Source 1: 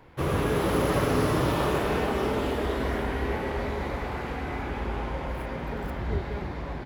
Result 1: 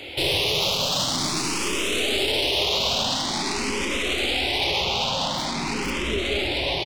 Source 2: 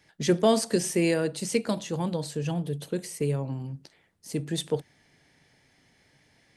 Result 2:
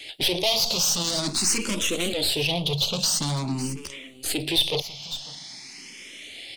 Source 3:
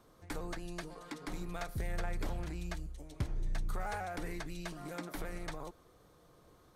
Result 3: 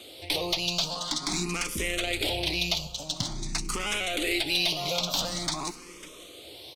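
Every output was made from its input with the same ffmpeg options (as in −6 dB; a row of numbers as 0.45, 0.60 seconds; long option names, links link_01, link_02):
-filter_complex "[0:a]equalizer=frequency=2700:width_type=o:width=2.7:gain=8.5,asplit=2[link_01][link_02];[link_02]acompressor=threshold=-34dB:ratio=6,volume=-1.5dB[link_03];[link_01][link_03]amix=inputs=2:normalize=0,tiltshelf=frequency=1100:gain=9,bandreject=frequency=460:width=12,asplit=2[link_04][link_05];[link_05]highpass=frequency=720:poles=1,volume=29dB,asoftclip=type=tanh:threshold=-2.5dB[link_06];[link_04][link_06]amix=inputs=2:normalize=0,lowpass=frequency=1000:poles=1,volume=-6dB,aexciter=amount=15.3:drive=9.3:freq=2700,aeval=exprs='(tanh(0.794*val(0)+0.7)-tanh(0.7))/0.794':channel_layout=same,asplit=2[link_07][link_08];[link_08]aecho=0:1:549:0.119[link_09];[link_07][link_09]amix=inputs=2:normalize=0,alimiter=level_in=1dB:limit=-1dB:release=50:level=0:latency=1,asplit=2[link_10][link_11];[link_11]afreqshift=0.47[link_12];[link_10][link_12]amix=inputs=2:normalize=1,volume=-9dB"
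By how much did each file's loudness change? +6.0, +4.5, +14.0 LU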